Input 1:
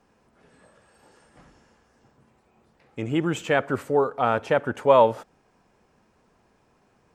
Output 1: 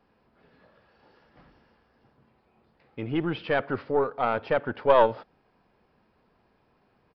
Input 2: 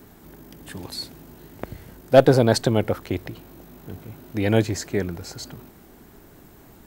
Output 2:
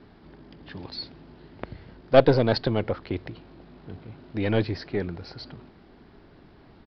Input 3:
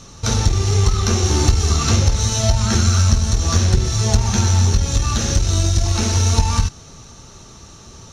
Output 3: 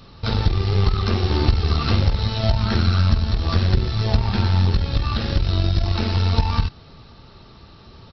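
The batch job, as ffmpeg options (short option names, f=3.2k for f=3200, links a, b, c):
-af "aeval=exprs='0.708*(cos(1*acos(clip(val(0)/0.708,-1,1)))-cos(1*PI/2))+0.0794*(cos(4*acos(clip(val(0)/0.708,-1,1)))-cos(4*PI/2))':c=same,aresample=11025,aresample=44100,volume=-3dB"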